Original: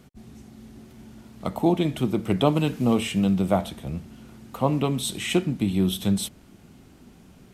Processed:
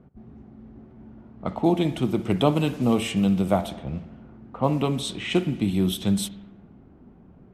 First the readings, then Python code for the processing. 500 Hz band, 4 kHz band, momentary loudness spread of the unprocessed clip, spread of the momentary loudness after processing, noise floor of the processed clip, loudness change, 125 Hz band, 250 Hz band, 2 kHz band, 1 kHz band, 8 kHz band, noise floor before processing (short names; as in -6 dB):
0.0 dB, -0.5 dB, 12 LU, 12 LU, -51 dBFS, 0.0 dB, 0.0 dB, 0.0 dB, 0.0 dB, 0.0 dB, -2.5 dB, -52 dBFS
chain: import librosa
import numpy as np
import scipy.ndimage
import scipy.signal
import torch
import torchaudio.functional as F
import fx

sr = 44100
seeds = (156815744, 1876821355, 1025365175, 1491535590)

y = fx.rev_spring(x, sr, rt60_s=1.3, pass_ms=(55,), chirp_ms=80, drr_db=15.0)
y = fx.env_lowpass(y, sr, base_hz=920.0, full_db=-20.0)